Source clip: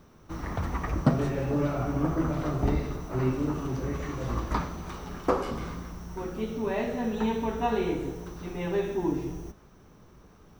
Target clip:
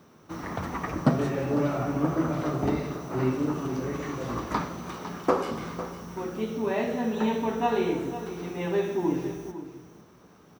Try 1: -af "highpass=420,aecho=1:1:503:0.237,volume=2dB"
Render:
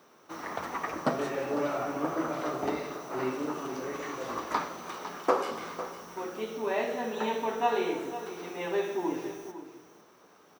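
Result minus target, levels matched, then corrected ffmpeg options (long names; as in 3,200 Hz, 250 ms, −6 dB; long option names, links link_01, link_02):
125 Hz band −12.0 dB
-af "highpass=140,aecho=1:1:503:0.237,volume=2dB"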